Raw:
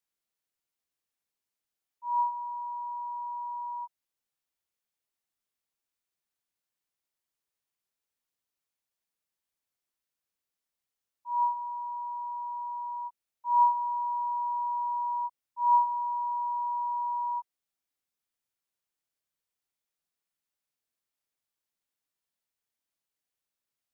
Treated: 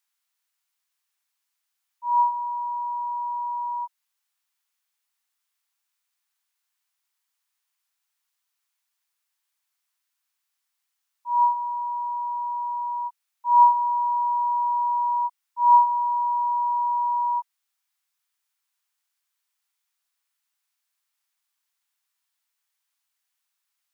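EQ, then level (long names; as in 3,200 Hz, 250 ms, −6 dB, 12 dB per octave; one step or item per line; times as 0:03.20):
high-pass filter 870 Hz 24 dB per octave
+9.0 dB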